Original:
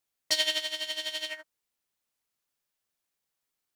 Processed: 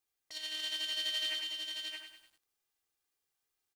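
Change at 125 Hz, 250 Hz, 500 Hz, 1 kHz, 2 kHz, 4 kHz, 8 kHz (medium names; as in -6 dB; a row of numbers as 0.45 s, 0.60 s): no reading, -7.0 dB, -14.5 dB, -9.0 dB, -6.5 dB, -3.5 dB, -9.0 dB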